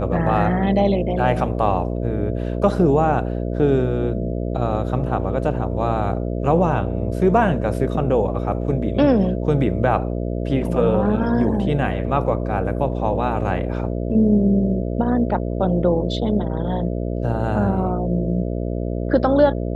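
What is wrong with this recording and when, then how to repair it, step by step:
buzz 60 Hz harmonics 11 -24 dBFS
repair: de-hum 60 Hz, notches 11

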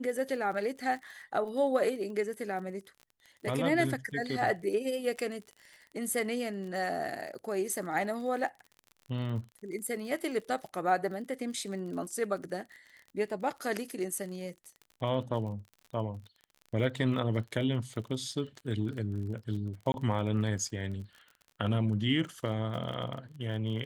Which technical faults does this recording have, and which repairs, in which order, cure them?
crackle 38/s -41 dBFS
19.92–19.94 gap 21 ms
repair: de-click; interpolate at 19.92, 21 ms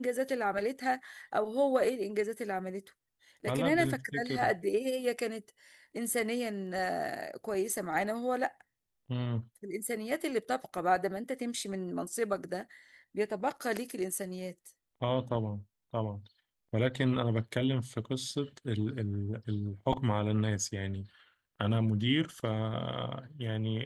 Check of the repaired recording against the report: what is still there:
none

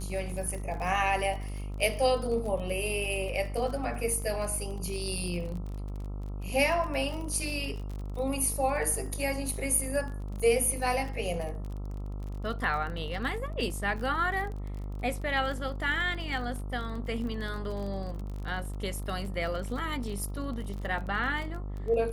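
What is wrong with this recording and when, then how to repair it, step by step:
buzz 50 Hz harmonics 27 -36 dBFS
crackle 34/s -36 dBFS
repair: de-click; de-hum 50 Hz, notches 27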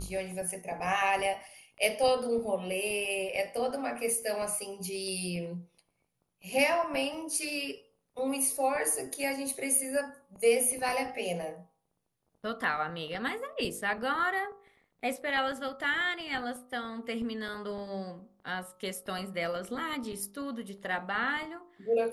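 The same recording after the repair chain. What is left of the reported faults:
none

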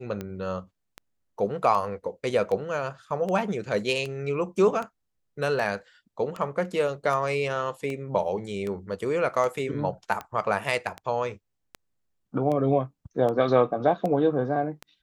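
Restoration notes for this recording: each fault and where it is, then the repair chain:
tick 78 rpm -20 dBFS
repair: de-click

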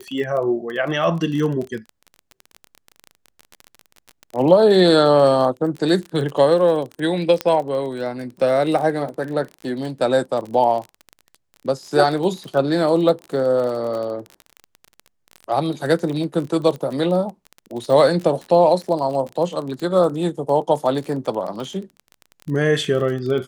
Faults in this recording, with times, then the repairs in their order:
crackle 26/s -26 dBFS
7.41 pop -7 dBFS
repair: de-click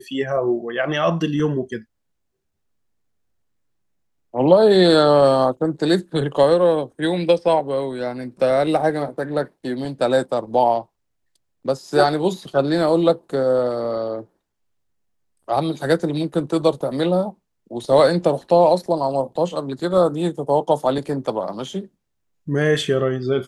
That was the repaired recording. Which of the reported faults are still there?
none

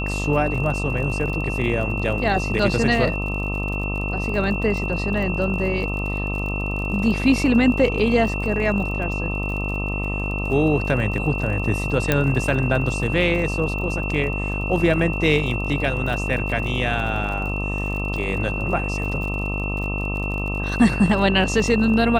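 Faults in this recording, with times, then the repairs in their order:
buzz 50 Hz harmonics 26 -26 dBFS
crackle 41/s -30 dBFS
tone 2700 Hz -28 dBFS
12.12 pop -4 dBFS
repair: de-click; notch 2700 Hz, Q 30; de-hum 50 Hz, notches 26

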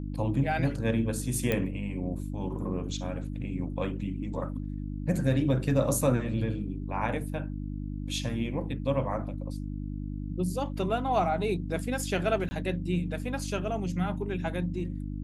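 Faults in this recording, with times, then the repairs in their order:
hum 50 Hz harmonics 6 -35 dBFS
1.52 pop -14 dBFS
12.49–12.51 gap 20 ms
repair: de-click; de-hum 50 Hz, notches 6; interpolate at 12.49, 20 ms

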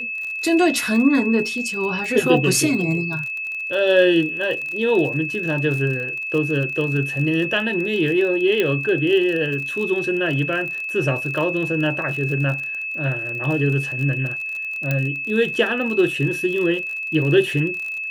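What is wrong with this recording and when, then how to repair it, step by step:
crackle 40/s -27 dBFS
tone 2600 Hz -25 dBFS
8.6 pop -8 dBFS
14.91 pop -9 dBFS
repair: de-click; notch 2600 Hz, Q 30

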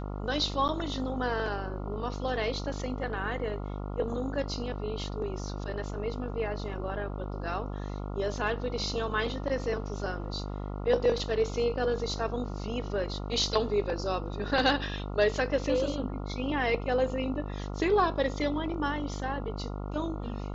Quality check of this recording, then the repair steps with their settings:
buzz 50 Hz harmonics 28 -36 dBFS
0.68–0.69 gap 8.9 ms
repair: de-hum 50 Hz, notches 28; interpolate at 0.68, 8.9 ms

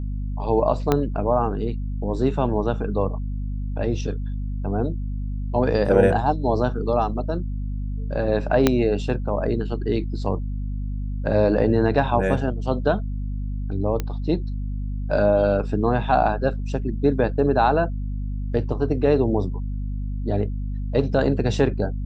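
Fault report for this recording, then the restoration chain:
hum 50 Hz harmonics 5 -27 dBFS
0.92 pop -6 dBFS
8.67 pop -2 dBFS
14 pop -12 dBFS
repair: de-click; de-hum 50 Hz, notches 5

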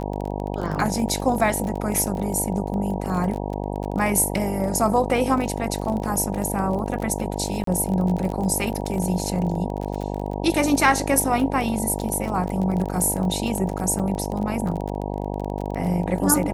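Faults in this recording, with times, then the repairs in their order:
buzz 50 Hz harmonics 19 -28 dBFS
crackle 26/s -27 dBFS
7.64–7.67 gap 33 ms
13.99–14 gap 6.3 ms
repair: de-click; de-hum 50 Hz, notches 19; interpolate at 7.64, 33 ms; interpolate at 13.99, 6.3 ms

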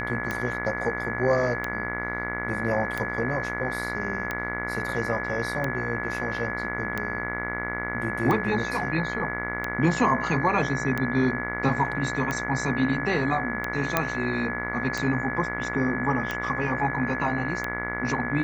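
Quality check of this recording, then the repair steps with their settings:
buzz 60 Hz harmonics 38 -33 dBFS
tick 45 rpm -14 dBFS
tone 1700 Hz -31 dBFS
13.97 pop -6 dBFS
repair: de-click; de-hum 60 Hz, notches 38; notch 1700 Hz, Q 30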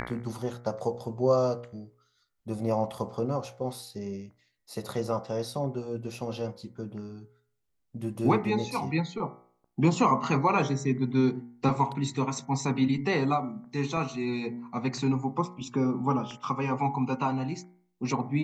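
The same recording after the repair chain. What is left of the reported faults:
none

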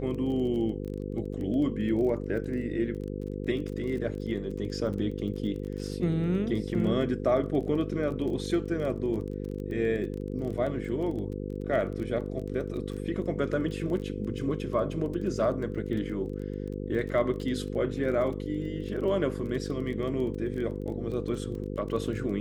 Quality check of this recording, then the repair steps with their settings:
buzz 50 Hz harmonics 10 -35 dBFS
crackle 23/s -36 dBFS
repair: de-click; de-hum 50 Hz, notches 10

